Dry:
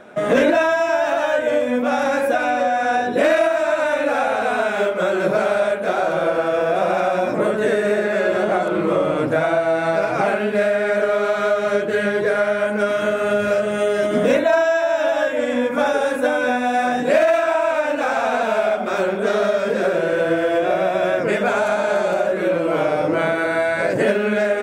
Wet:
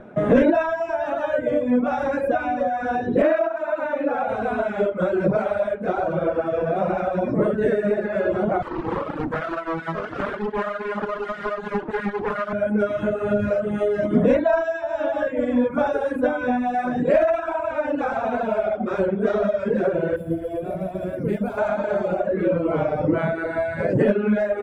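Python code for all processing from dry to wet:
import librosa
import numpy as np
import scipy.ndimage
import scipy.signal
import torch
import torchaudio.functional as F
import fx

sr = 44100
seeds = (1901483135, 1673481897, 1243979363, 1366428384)

y = fx.chain(x, sr, fx.highpass(hz=200.0, slope=12),
    fx.high_shelf(hz=4600.0, db=-4.5),
    fx.resample_linear(factor=3), at=(3.22, 4.29))
y = fx.chain(y, sr, fx.lower_of_two(delay_ms=0.57),
    fx.highpass(hz=320.0, slope=12),
    fx.doppler_dist(depth_ms=0.38), at=(8.62, 12.53))
y = fx.chain(y, sr, fx.peak_eq(hz=1300.0, db=-11.0, octaves=2.7),
    fx.resample_bad(factor=4, down='none', up='hold'), at=(20.16, 21.58))
y = fx.riaa(y, sr, side='playback')
y = fx.dereverb_blind(y, sr, rt60_s=1.8)
y = fx.peak_eq(y, sr, hz=4800.0, db=-4.0, octaves=2.4)
y = F.gain(torch.from_numpy(y), -2.5).numpy()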